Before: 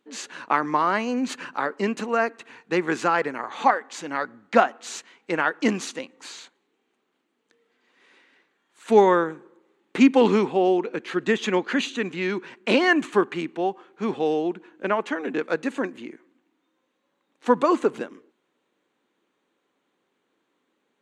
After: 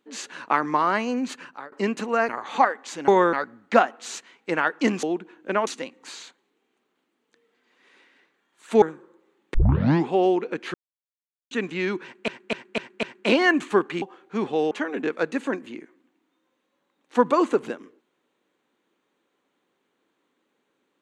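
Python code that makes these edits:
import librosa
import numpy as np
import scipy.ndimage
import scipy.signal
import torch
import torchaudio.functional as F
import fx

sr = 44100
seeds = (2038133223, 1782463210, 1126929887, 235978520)

y = fx.edit(x, sr, fx.fade_out_to(start_s=1.11, length_s=0.61, floor_db=-21.5),
    fx.cut(start_s=2.29, length_s=1.06),
    fx.move(start_s=8.99, length_s=0.25, to_s=4.14),
    fx.tape_start(start_s=9.96, length_s=0.54),
    fx.silence(start_s=11.16, length_s=0.77),
    fx.repeat(start_s=12.45, length_s=0.25, count=5),
    fx.cut(start_s=13.44, length_s=0.25),
    fx.move(start_s=14.38, length_s=0.64, to_s=5.84), tone=tone)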